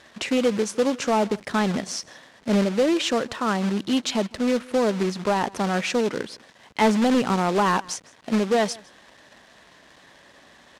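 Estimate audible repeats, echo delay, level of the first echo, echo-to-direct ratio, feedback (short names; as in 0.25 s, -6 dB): 1, 0.159 s, -23.5 dB, -23.5 dB, no steady repeat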